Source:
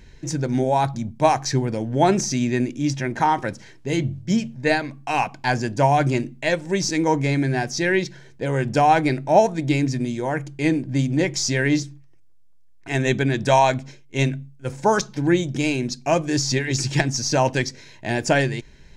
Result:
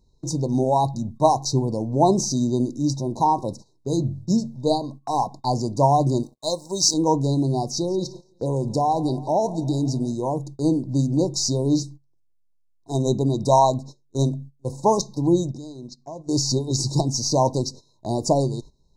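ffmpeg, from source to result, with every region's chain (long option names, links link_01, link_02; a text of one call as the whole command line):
ffmpeg -i in.wav -filter_complex "[0:a]asettb=1/sr,asplit=3[link_01][link_02][link_03];[link_01]atrim=end=6.234[link_04];[link_02]atrim=start=6.23:end=6.94,asetpts=PTS-STARTPTS,afade=type=in:duration=0.004:curve=qsin,afade=type=out:start_time=0.706:duration=0.004:curve=qsin,tiltshelf=frequency=850:gain=-8,aeval=exprs='sgn(val(0))*max(abs(val(0))-0.00355,0)':channel_layout=same[link_05];[link_03]atrim=start=6.936[link_06];[link_04][link_05]acrossfade=duration=0.004:curve1=hsin:curve2=qsin[link_07];[link_07][link_06]acrossfade=duration=0.004:curve1=qsin:curve2=hsin,asettb=1/sr,asplit=3[link_08][link_09][link_10];[link_08]atrim=end=7.644[link_11];[link_09]atrim=start=7.64:end=10.14,asetpts=PTS-STARTPTS,afade=type=in:duration=0.004:curve=qsin,afade=type=out:start_time=2.496:duration=0.004:curve=qsin,acompressor=threshold=-18dB:ratio=3:attack=3.2:release=140:knee=1:detection=peak,aecho=1:1:171|342|513|684|855:0.112|0.0673|0.0404|0.0242|0.0145,atrim=end_sample=110250[link_12];[link_10]atrim=start=10.136[link_13];[link_11][link_12]acrossfade=duration=0.004:curve1=hsin:curve2=qsin[link_14];[link_14][link_13]acrossfade=duration=0.004:curve1=qsin:curve2=hsin,asettb=1/sr,asplit=3[link_15][link_16][link_17];[link_15]atrim=end=15.514[link_18];[link_16]atrim=start=15.51:end=16.29,asetpts=PTS-STARTPTS,afade=type=in:duration=0.004:curve=qsin,afade=type=out:start_time=0.776:duration=0.004:curve=qsin,lowpass=7100,acompressor=threshold=-35dB:ratio=4:attack=3.2:release=140:knee=1:detection=peak[link_19];[link_17]atrim=start=16.286[link_20];[link_18][link_19]acrossfade=duration=0.004:curve1=hsin:curve2=qsin[link_21];[link_21][link_20]acrossfade=duration=0.004:curve1=qsin:curve2=hsin,afftfilt=real='re*(1-between(b*sr/4096,1100,3700))':imag='im*(1-between(b*sr/4096,1100,3700))':win_size=4096:overlap=0.75,agate=range=-15dB:threshold=-37dB:ratio=16:detection=peak" out.wav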